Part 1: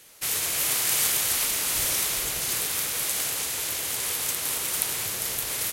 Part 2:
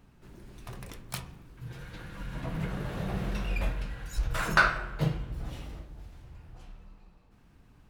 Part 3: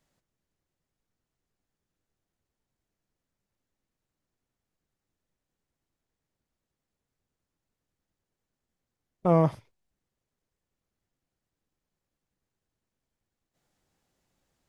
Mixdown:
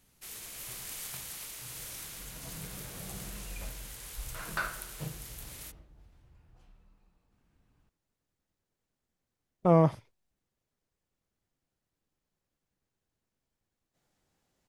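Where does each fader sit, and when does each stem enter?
-18.0, -12.0, -0.5 dB; 0.00, 0.00, 0.40 s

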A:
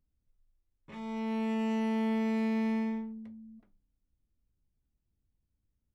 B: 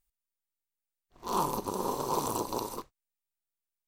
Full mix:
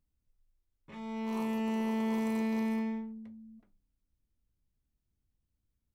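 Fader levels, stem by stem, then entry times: -1.5, -17.0 dB; 0.00, 0.00 s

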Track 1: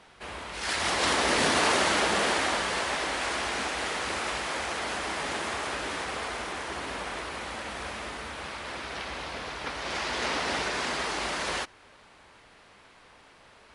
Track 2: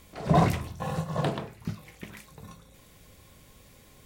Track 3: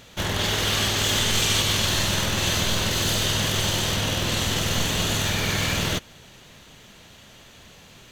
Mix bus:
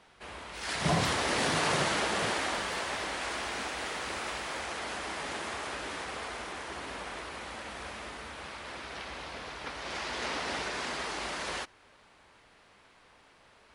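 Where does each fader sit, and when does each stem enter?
-5.0 dB, -8.0 dB, off; 0.00 s, 0.55 s, off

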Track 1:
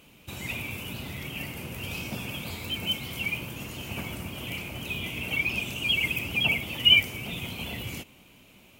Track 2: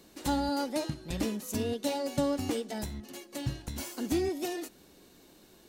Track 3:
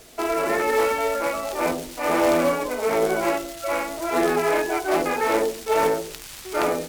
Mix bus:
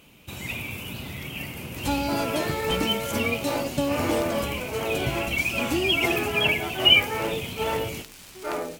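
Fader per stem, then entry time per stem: +1.5, +3.0, -7.5 dB; 0.00, 1.60, 1.90 s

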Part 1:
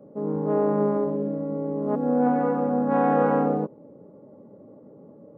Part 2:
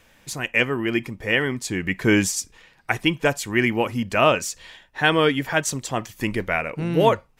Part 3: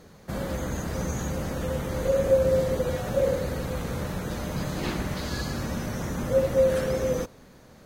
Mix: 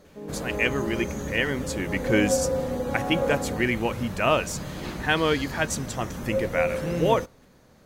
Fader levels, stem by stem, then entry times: -10.0, -4.5, -4.5 dB; 0.00, 0.05, 0.00 s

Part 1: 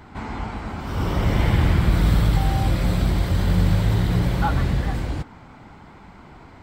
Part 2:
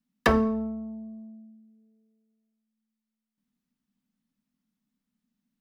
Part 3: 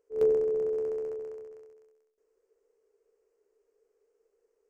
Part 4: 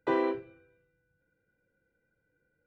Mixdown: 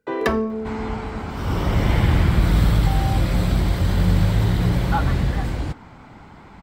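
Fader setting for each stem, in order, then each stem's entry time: +1.0, 0.0, -4.0, +1.0 dB; 0.50, 0.00, 0.00, 0.00 s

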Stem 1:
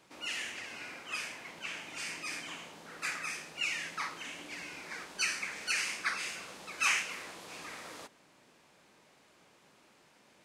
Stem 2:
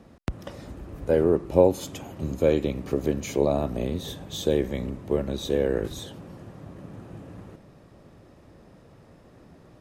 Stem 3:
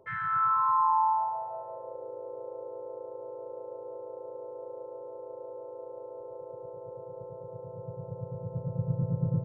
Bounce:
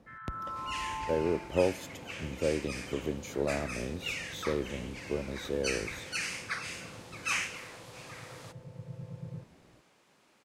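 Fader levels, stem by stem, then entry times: -2.5, -9.0, -13.5 dB; 0.45, 0.00, 0.00 s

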